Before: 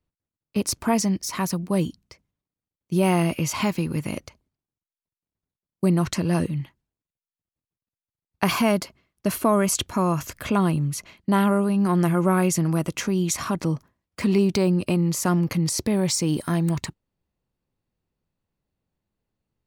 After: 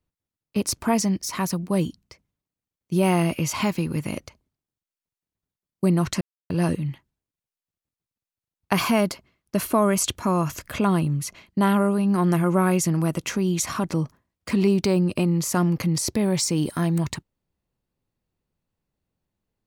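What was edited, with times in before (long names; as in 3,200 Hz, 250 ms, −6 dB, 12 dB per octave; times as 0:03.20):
0:06.21: splice in silence 0.29 s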